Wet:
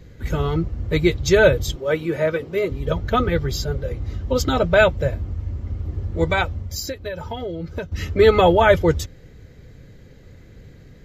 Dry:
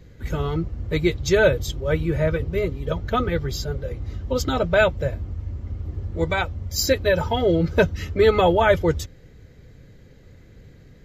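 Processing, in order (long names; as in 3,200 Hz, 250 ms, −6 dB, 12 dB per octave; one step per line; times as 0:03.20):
0:01.76–0:02.70: high-pass filter 240 Hz 12 dB per octave
0:06.58–0:07.92: downward compressor 10 to 1, threshold −29 dBFS, peak gain reduction 18 dB
level +3 dB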